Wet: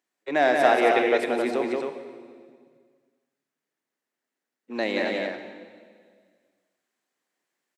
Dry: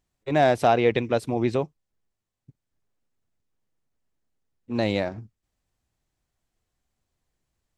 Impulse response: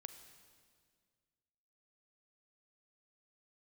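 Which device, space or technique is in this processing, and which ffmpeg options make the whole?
stadium PA: -filter_complex "[0:a]highpass=f=250:w=0.5412,highpass=f=250:w=1.3066,equalizer=f=1800:t=o:w=0.8:g=6.5,aecho=1:1:180.8|268.2:0.631|0.562[s0];[1:a]atrim=start_sample=2205[s1];[s0][s1]afir=irnorm=-1:irlink=0,volume=1.5"

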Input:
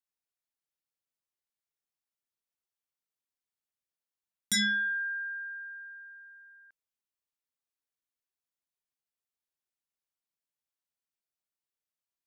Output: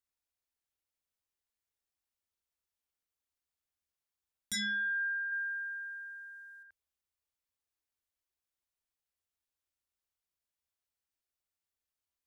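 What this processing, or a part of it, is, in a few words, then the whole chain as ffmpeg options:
car stereo with a boomy subwoofer: -filter_complex "[0:a]asettb=1/sr,asplit=3[s0][s1][s2];[s0]atrim=end=5.324[s3];[s1]atrim=start=5.32:end=6.63,asetpts=PTS-STARTPTS,afade=t=in:d=0.004:c=qsin,afade=t=out:st=1.306:d=0.004:c=qsin,equalizer=f=8200:t=o:w=2.7:g=13[s4];[s2]atrim=start=6.626[s5];[s3][s4]acrossfade=d=0.004:c1=hsin:c2=qsin[s6];[s6][s5]acrossfade=d=0.004:c1=qsin:c2=hsin,lowshelf=f=100:t=q:w=3:g=6,alimiter=level_in=2:limit=0.0631:level=0:latency=1,volume=0.501"

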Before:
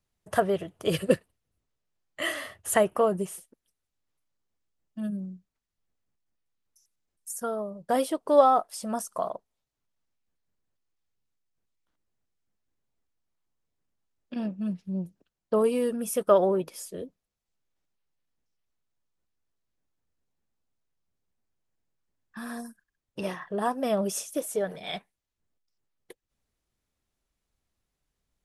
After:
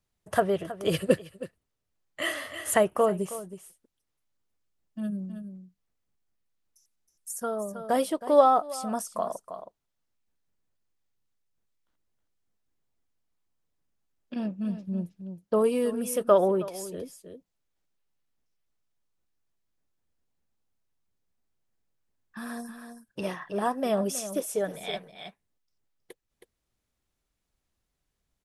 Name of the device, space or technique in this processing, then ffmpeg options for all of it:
ducked delay: -filter_complex "[0:a]asplit=3[s0][s1][s2];[s1]adelay=319,volume=0.398[s3];[s2]apad=whole_len=1268547[s4];[s3][s4]sidechaincompress=threshold=0.0316:ratio=8:attack=46:release=845[s5];[s0][s5]amix=inputs=2:normalize=0"

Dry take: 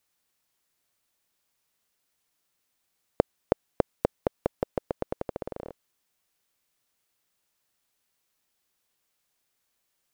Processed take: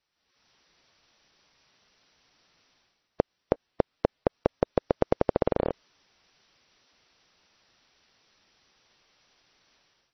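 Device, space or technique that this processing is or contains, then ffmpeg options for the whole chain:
low-bitrate web radio: -filter_complex "[0:a]asettb=1/sr,asplit=3[s0][s1][s2];[s0]atrim=end=3.674[s3];[s1]atrim=start=3.67:end=4.33,asetpts=PTS-STARTPTS,afade=t=in:d=0.004:c=qsin,afade=t=out:st=0.656:d=0.004:c=qsin,lowpass=f=5400:w=0.5412,lowpass=f=5400:w=1.3066[s4];[s2]atrim=start=4.326[s5];[s3][s4]acrossfade=d=0.004:c1=hsin:c2=qsin[s6];[s6][s5]acrossfade=d=0.004:c1=qsin:c2=hsin,dynaudnorm=f=140:g=5:m=5.96,alimiter=limit=0.596:level=0:latency=1:release=78" -ar 24000 -c:a libmp3lame -b:a 24k

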